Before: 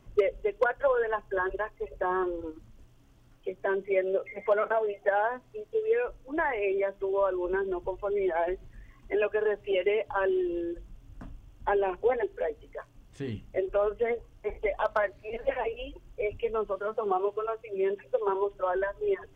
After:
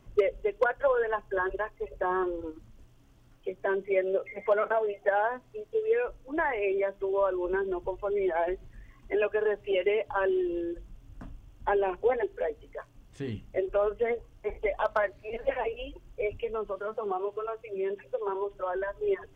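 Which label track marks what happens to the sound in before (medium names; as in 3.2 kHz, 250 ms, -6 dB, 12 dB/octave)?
16.440000	18.880000	compression 1.5:1, threshold -33 dBFS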